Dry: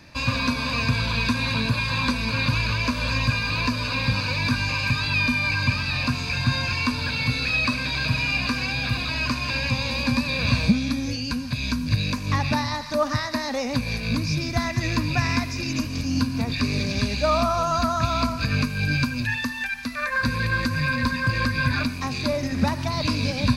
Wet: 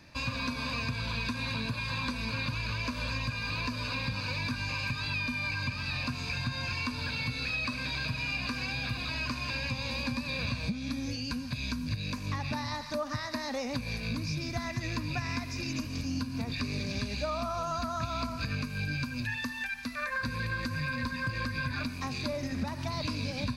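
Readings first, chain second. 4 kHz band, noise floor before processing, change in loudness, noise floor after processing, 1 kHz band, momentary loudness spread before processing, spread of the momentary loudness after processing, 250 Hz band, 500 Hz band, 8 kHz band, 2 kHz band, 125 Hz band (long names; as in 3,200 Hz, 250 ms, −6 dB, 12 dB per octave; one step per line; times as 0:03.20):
−9.0 dB, −31 dBFS, −9.5 dB, −39 dBFS, −10.0 dB, 5 LU, 3 LU, −10.0 dB, −10.0 dB, −9.0 dB, −9.5 dB, −10.0 dB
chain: downward compressor, threshold −23 dBFS, peak gain reduction 10 dB
level −6.5 dB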